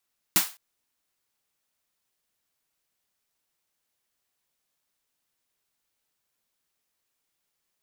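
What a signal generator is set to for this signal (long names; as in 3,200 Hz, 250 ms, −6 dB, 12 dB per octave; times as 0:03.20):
synth snare length 0.21 s, tones 190 Hz, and 320 Hz, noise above 720 Hz, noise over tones 10.5 dB, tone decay 0.13 s, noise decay 0.31 s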